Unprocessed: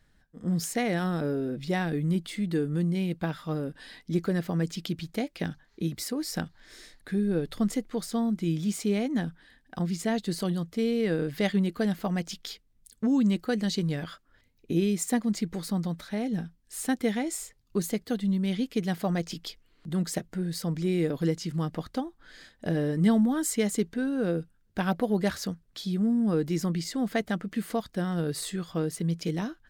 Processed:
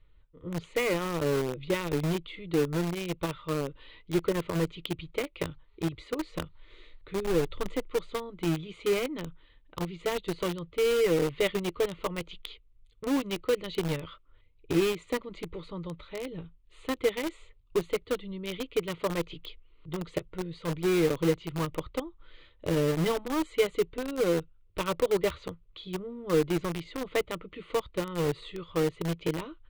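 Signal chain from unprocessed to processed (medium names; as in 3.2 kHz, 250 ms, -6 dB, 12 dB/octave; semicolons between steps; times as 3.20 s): low-pass 4.3 kHz 24 dB/octave; bass shelf 80 Hz +8.5 dB; static phaser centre 1.1 kHz, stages 8; in parallel at -4 dB: bit crusher 5-bit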